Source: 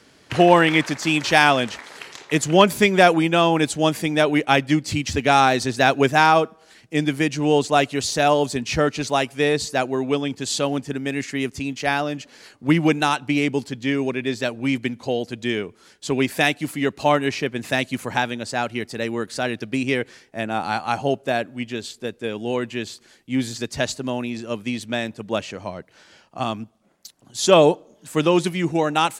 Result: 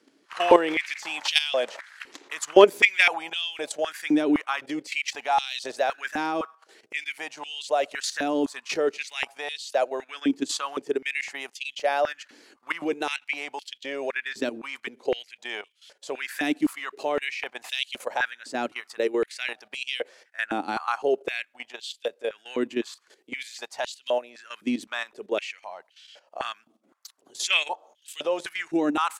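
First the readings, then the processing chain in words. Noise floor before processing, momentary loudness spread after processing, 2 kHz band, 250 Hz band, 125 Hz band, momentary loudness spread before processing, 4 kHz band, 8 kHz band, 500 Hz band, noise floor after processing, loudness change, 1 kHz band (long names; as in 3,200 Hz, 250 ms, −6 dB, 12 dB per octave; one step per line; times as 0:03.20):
−54 dBFS, 14 LU, −4.5 dB, −8.5 dB, −26.0 dB, 13 LU, −4.0 dB, −7.0 dB, −5.5 dB, −66 dBFS, −6.0 dB, −8.0 dB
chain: output level in coarse steps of 13 dB
high-pass on a step sequencer 3.9 Hz 290–3,100 Hz
level −3 dB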